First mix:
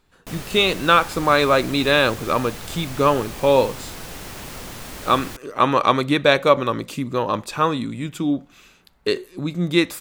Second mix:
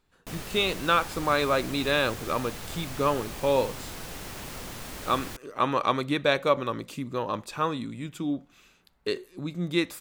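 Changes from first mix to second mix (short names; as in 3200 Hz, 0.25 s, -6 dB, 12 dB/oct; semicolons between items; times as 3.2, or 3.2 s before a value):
speech -8.0 dB; background -4.0 dB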